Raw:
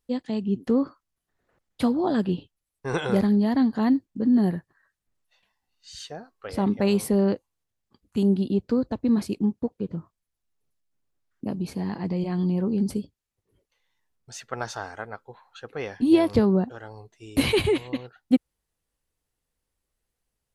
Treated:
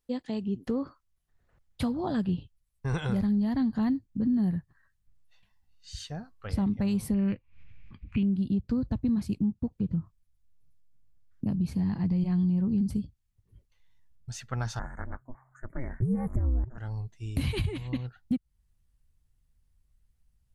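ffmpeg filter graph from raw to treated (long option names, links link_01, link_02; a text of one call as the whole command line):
ffmpeg -i in.wav -filter_complex "[0:a]asettb=1/sr,asplit=3[link_01][link_02][link_03];[link_01]atrim=end=7.144[link_04];[link_02]atrim=start=7.14:end=8.33,asetpts=PTS-STARTPTS,afade=type=in:duration=0.004:curve=qsin,afade=type=out:start_time=1.186:duration=0.004:curve=qsin,equalizer=frequency=770:width=2.8:gain=-6.5,acompressor=mode=upward:threshold=-43dB:ratio=2.5:attack=3.2:release=140:knee=2.83:detection=peak,lowpass=frequency=2400:width_type=q:width=7.6[link_05];[link_03]atrim=start=8.326[link_06];[link_04][link_05]acrossfade=duration=0.004:curve1=hsin:curve2=qsin[link_07];[link_07][link_06]acrossfade=duration=0.004:curve1=qsin:curve2=hsin,asettb=1/sr,asplit=3[link_08][link_09][link_10];[link_08]atrim=end=14.794[link_11];[link_09]atrim=start=14.79:end=16.78,asetpts=PTS-STARTPTS,afade=type=in:duration=0.004:curve=qsin,afade=type=out:start_time=1.986:duration=0.004:curve=qsin,asuperstop=centerf=3800:order=20:qfactor=0.82,aeval=exprs='val(0)*sin(2*PI*130*n/s)':channel_layout=same[link_12];[link_10]atrim=start=16.776[link_13];[link_11][link_12]acrossfade=duration=0.004:curve1=hsin:curve2=qsin[link_14];[link_14][link_13]acrossfade=duration=0.004:curve1=qsin:curve2=hsin,asubboost=boost=10.5:cutoff=130,alimiter=limit=-11.5dB:level=0:latency=1:release=332,acompressor=threshold=-26dB:ratio=2,volume=-2.5dB" out.wav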